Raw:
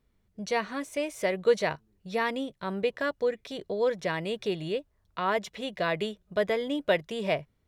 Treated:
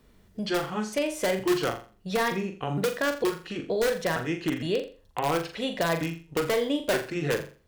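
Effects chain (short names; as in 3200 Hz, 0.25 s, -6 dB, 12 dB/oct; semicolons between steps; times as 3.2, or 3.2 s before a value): trilling pitch shifter -5 st, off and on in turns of 0.462 s; notch 2200 Hz, Q 17; in parallel at -4 dB: wrapped overs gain 21 dB; on the sum: bell 110 Hz -8 dB 0.29 oct; on a send: flutter echo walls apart 7.2 m, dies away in 0.34 s; on the sum: three-band squash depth 40%; gain -1.5 dB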